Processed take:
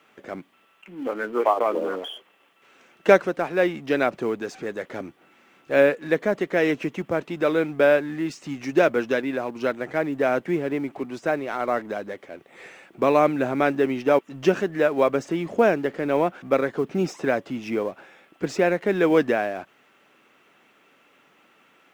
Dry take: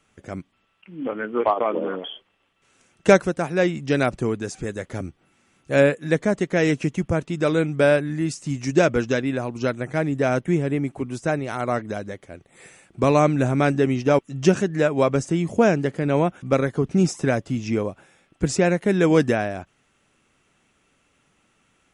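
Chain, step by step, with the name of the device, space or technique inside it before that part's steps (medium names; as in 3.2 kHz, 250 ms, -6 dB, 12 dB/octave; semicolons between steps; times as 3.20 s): phone line with mismatched companding (band-pass 300–3300 Hz; companding laws mixed up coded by mu)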